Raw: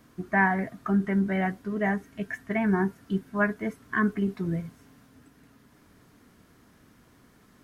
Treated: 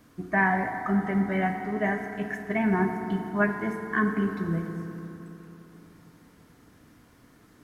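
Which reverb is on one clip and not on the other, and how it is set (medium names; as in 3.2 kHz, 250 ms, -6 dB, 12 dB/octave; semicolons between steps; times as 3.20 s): FDN reverb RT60 3.4 s, high-frequency decay 0.4×, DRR 4 dB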